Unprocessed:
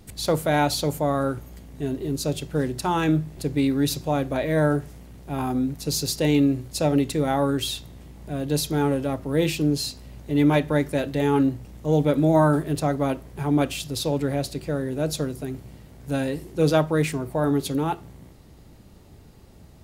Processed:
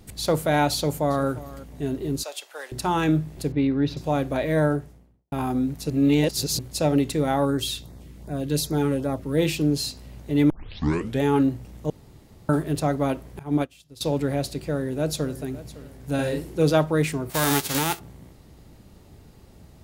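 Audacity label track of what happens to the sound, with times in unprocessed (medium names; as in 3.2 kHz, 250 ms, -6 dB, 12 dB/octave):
0.750000	1.280000	echo throw 350 ms, feedback 15%, level -18 dB
2.230000	2.720000	high-pass 680 Hz 24 dB/octave
3.520000	3.970000	distance through air 280 m
4.520000	5.320000	studio fade out
5.900000	6.590000	reverse
7.450000	9.380000	LFO notch sine 2.6 Hz 670–3200 Hz
10.500000	10.500000	tape start 0.72 s
11.900000	12.490000	room tone
13.390000	14.010000	upward expansion 2.5:1, over -34 dBFS
14.630000	15.410000	echo throw 560 ms, feedback 45%, level -17 dB
16.140000	16.630000	doubling 47 ms -3 dB
17.290000	17.980000	formants flattened exponent 0.3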